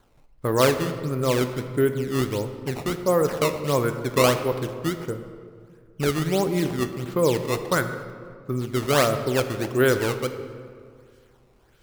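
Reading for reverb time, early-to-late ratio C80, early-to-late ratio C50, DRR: 2.1 s, 10.5 dB, 9.5 dB, 8.0 dB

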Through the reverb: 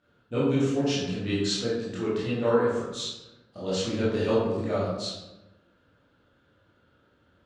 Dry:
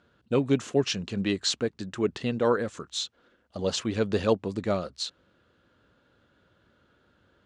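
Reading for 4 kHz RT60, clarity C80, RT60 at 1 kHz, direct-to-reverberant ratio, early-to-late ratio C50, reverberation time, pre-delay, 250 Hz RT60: 0.60 s, 3.0 dB, 0.95 s, -9.0 dB, 0.0 dB, 1.0 s, 17 ms, 1.3 s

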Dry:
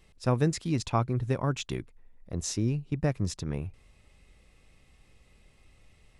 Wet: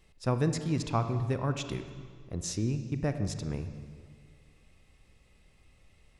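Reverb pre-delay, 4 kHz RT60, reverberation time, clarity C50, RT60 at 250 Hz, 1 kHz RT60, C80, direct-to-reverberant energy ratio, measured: 30 ms, 1.6 s, 1.9 s, 9.0 dB, 2.1 s, 1.8 s, 10.5 dB, 8.5 dB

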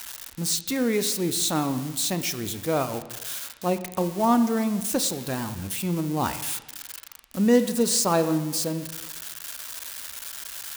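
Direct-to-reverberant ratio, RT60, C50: 10.0 dB, 1.2 s, 12.0 dB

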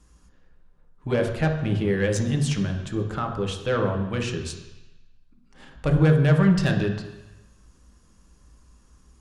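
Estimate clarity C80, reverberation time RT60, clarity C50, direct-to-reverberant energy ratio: 9.0 dB, 1.0 s, 6.5 dB, 2.0 dB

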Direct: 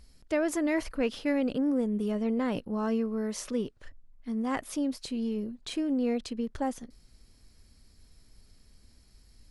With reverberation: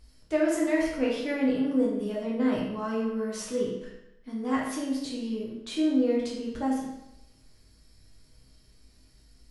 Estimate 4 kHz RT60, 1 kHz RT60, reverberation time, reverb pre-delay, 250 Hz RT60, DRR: 0.75 s, 0.85 s, 0.85 s, 6 ms, 0.85 s, -5.0 dB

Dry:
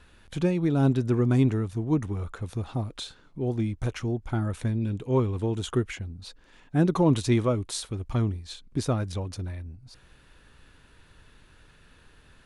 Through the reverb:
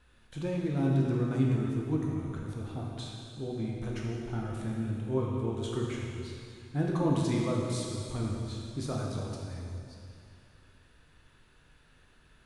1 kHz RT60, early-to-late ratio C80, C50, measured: 2.7 s, 1.0 dB, 0.0 dB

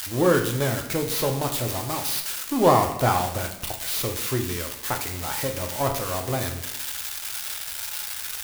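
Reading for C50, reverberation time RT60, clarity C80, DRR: 8.5 dB, 0.85 s, 11.0 dB, 3.0 dB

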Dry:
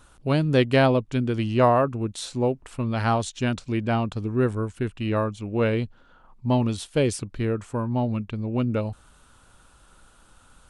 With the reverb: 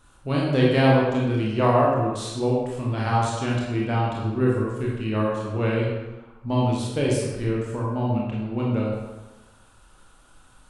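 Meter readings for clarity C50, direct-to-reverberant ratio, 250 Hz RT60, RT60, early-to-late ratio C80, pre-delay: 0.0 dB, -4.5 dB, 1.1 s, 1.1 s, 2.5 dB, 22 ms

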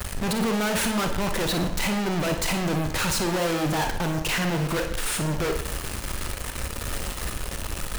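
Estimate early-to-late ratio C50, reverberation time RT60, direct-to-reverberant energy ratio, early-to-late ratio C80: 7.0 dB, 0.65 s, 4.5 dB, 11.5 dB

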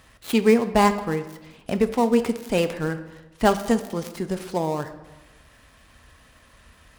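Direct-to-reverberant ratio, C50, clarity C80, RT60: 9.0 dB, 12.5 dB, 14.5 dB, 1.1 s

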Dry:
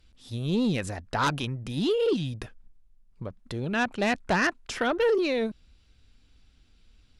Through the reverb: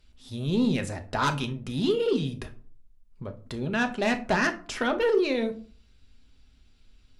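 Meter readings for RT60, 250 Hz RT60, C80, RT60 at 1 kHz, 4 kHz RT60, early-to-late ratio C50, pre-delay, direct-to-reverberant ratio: 0.45 s, 0.60 s, 20.0 dB, 0.40 s, 0.25 s, 14.5 dB, 5 ms, 6.0 dB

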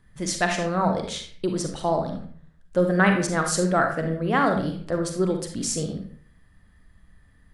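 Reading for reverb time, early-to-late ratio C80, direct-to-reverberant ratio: 0.50 s, 10.0 dB, 3.5 dB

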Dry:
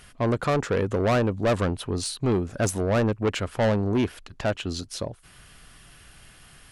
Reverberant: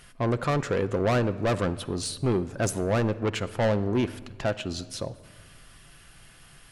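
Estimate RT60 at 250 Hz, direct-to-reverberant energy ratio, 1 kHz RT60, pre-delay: 2.0 s, 10.5 dB, 1.4 s, 6 ms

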